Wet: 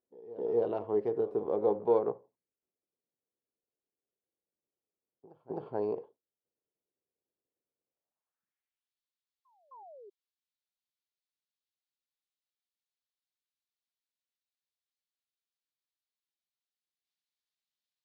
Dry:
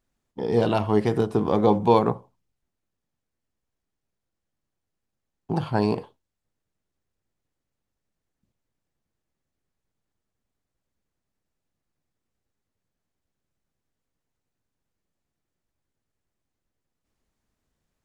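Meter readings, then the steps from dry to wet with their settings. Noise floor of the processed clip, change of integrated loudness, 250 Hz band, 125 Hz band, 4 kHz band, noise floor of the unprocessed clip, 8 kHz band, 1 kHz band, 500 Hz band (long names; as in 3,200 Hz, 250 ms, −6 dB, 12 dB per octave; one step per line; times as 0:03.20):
below −85 dBFS, −9.0 dB, −15.0 dB, −22.5 dB, below −25 dB, −84 dBFS, can't be measured, −14.5 dB, −6.0 dB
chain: gain on one half-wave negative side −3 dB
dynamic equaliser 230 Hz, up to −6 dB, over −33 dBFS, Q 0.97
band-pass filter sweep 440 Hz → 3,900 Hz, 0:07.84–0:08.92
sound drawn into the spectrogram fall, 0:09.71–0:10.10, 380–1,100 Hz −49 dBFS
on a send: backwards echo 262 ms −18 dB
on the sum: level −2 dB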